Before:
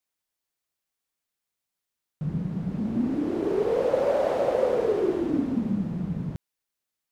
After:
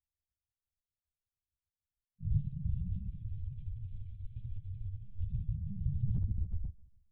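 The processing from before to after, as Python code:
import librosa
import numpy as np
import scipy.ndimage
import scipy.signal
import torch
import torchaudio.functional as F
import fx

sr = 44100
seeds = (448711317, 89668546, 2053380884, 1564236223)

y = fx.tape_stop_end(x, sr, length_s=1.37)
y = scipy.signal.sosfilt(scipy.signal.cheby2(4, 80, [370.0, 1300.0], 'bandstop', fs=sr, output='sos'), y)
y = fx.env_lowpass(y, sr, base_hz=710.0, full_db=-36.0)
y = scipy.signal.sosfilt(scipy.signal.butter(2, 74.0, 'highpass', fs=sr, output='sos'), y)
y = fx.dereverb_blind(y, sr, rt60_s=0.95)
y = fx.low_shelf(y, sr, hz=140.0, db=12.0)
y = fx.over_compress(y, sr, threshold_db=-36.0, ratio=-0.5)
y = fx.pitch_keep_formants(y, sr, semitones=-4.0)
y = fx.air_absorb(y, sr, metres=200.0)
y = fx.echo_feedback(y, sr, ms=142, feedback_pct=44, wet_db=-18.5)
y = fx.lpc_monotone(y, sr, seeds[0], pitch_hz=200.0, order=16)
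y = F.gain(torch.from_numpy(y), 9.5).numpy()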